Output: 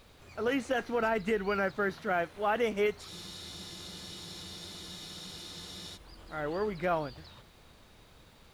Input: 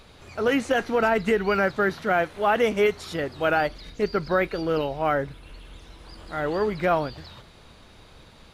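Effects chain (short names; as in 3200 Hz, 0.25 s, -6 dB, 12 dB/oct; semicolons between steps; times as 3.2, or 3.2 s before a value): added noise pink -58 dBFS; spectral freeze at 3.12, 2.83 s; gain -8 dB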